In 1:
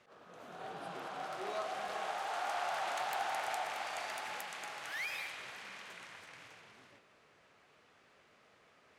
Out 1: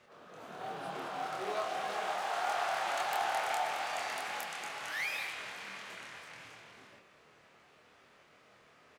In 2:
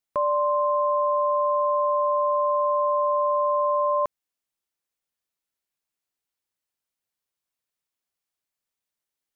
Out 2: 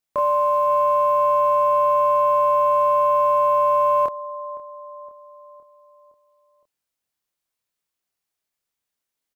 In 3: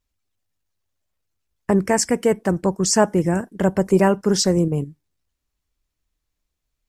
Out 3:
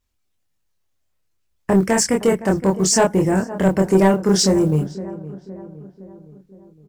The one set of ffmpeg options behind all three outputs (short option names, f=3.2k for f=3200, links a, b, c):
-filter_complex "[0:a]asplit=2[a][b];[b]adelay=26,volume=-3dB[c];[a][c]amix=inputs=2:normalize=0,acrusher=bits=9:mode=log:mix=0:aa=0.000001,asplit=2[d][e];[e]adelay=514,lowpass=f=1.5k:p=1,volume=-17dB,asplit=2[f][g];[g]adelay=514,lowpass=f=1.5k:p=1,volume=0.55,asplit=2[h][i];[i]adelay=514,lowpass=f=1.5k:p=1,volume=0.55,asplit=2[j][k];[k]adelay=514,lowpass=f=1.5k:p=1,volume=0.55,asplit=2[l][m];[m]adelay=514,lowpass=f=1.5k:p=1,volume=0.55[n];[f][h][j][l][n]amix=inputs=5:normalize=0[o];[d][o]amix=inputs=2:normalize=0,acontrast=72,volume=-5dB"